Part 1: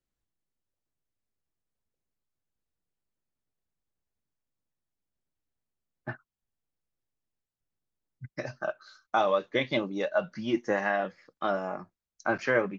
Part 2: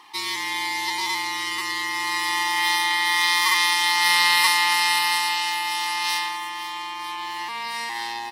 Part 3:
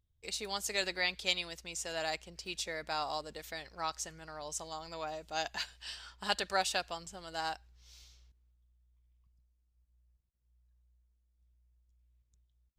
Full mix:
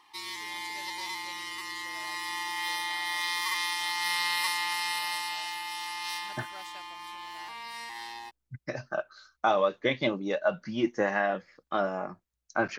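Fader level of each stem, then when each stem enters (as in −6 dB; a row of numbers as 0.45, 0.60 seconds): +0.5, −11.0, −17.0 decibels; 0.30, 0.00, 0.00 seconds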